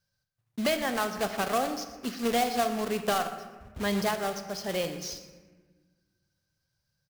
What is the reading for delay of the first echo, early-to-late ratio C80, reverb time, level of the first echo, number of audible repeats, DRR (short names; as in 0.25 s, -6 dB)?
0.12 s, 10.5 dB, 1.4 s, -16.0 dB, 2, 8.0 dB